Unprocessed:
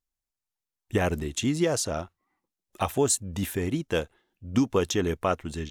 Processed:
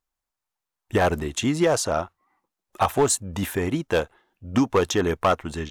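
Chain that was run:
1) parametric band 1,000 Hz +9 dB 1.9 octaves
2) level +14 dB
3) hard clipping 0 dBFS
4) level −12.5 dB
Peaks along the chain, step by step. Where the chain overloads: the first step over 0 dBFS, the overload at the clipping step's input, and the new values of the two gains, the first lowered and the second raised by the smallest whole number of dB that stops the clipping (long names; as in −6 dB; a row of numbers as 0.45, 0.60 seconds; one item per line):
−4.5, +9.5, 0.0, −12.5 dBFS
step 2, 9.5 dB
step 2 +4 dB, step 4 −2.5 dB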